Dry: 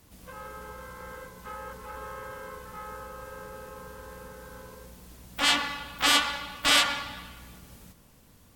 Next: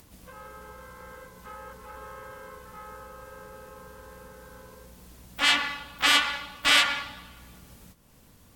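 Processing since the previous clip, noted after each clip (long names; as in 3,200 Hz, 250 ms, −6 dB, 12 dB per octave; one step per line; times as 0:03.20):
noise gate −51 dBFS, range −7 dB
dynamic equaliser 2,100 Hz, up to +7 dB, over −37 dBFS, Q 0.86
upward compression, threshold −41 dBFS
level −3 dB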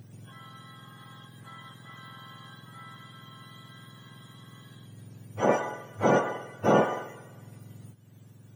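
frequency axis turned over on the octave scale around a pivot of 1,300 Hz
parametric band 2,700 Hz +2.5 dB
level −2.5 dB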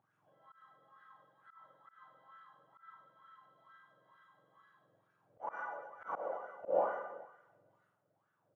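LFO wah 2.2 Hz 530–1,500 Hz, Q 8.7
reverse bouncing-ball delay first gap 40 ms, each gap 1.4×, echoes 5
volume swells 127 ms
level −2 dB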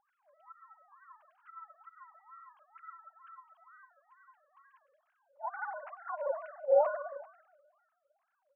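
three sine waves on the formant tracks
level +6 dB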